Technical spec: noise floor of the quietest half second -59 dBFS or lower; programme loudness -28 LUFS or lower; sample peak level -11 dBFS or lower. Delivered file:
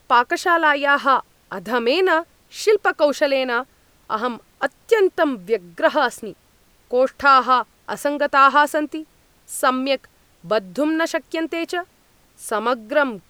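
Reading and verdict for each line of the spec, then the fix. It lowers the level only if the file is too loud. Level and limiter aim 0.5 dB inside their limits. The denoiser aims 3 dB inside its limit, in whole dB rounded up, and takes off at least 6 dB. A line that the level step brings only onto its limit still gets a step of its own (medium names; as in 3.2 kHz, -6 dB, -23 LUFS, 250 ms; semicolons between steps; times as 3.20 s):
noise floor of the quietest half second -57 dBFS: fail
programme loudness -19.5 LUFS: fail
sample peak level -2.5 dBFS: fail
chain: trim -9 dB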